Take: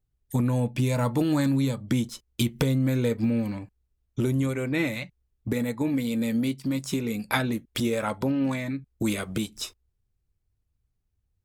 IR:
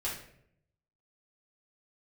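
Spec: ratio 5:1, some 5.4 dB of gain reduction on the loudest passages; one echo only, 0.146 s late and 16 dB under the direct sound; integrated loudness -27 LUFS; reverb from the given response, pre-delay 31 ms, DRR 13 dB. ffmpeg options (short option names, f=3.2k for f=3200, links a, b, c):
-filter_complex "[0:a]acompressor=threshold=-26dB:ratio=5,aecho=1:1:146:0.158,asplit=2[a][b];[1:a]atrim=start_sample=2205,adelay=31[c];[b][c]afir=irnorm=-1:irlink=0,volume=-17dB[d];[a][d]amix=inputs=2:normalize=0,volume=4dB"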